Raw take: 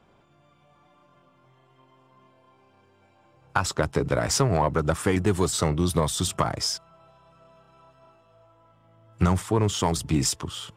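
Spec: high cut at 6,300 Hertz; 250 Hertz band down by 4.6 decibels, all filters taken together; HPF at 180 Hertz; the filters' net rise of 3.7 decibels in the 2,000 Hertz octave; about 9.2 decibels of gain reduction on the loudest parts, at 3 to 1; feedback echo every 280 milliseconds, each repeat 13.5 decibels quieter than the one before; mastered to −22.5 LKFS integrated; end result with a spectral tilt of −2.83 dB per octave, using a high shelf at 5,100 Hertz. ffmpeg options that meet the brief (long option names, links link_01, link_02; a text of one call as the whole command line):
ffmpeg -i in.wav -af "highpass=180,lowpass=6300,equalizer=frequency=250:width_type=o:gain=-4.5,equalizer=frequency=2000:width_type=o:gain=4,highshelf=frequency=5100:gain=8.5,acompressor=threshold=-30dB:ratio=3,aecho=1:1:280|560:0.211|0.0444,volume=10dB" out.wav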